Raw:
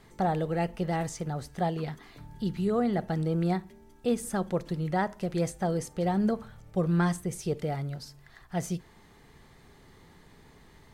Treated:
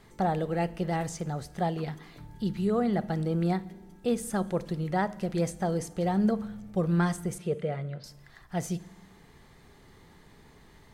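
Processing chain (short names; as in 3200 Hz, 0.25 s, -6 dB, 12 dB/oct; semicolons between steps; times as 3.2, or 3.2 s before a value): 7.38–8.04 speaker cabinet 110–3400 Hz, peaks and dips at 280 Hz -8 dB, 530 Hz +6 dB, 840 Hz -9 dB; on a send: reverb RT60 1.2 s, pre-delay 5 ms, DRR 18 dB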